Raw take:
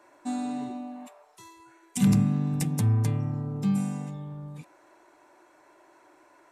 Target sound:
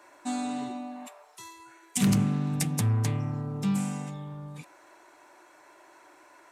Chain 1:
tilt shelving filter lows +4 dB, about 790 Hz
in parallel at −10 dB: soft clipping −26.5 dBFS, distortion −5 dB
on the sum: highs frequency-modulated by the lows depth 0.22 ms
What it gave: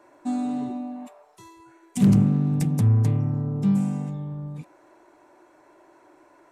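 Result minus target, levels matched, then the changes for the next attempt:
1,000 Hz band −6.5 dB
change: tilt shelving filter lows −4 dB, about 790 Hz

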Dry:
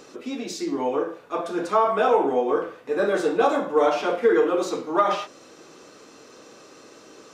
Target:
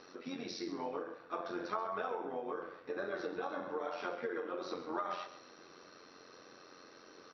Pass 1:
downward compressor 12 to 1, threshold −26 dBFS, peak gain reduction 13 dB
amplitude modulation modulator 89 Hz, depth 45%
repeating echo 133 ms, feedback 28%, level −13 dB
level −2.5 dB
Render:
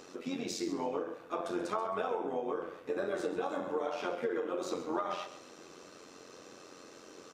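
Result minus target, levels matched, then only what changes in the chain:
8,000 Hz band +6.5 dB
add after downward compressor: Chebyshev low-pass with heavy ripple 5,800 Hz, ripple 6 dB

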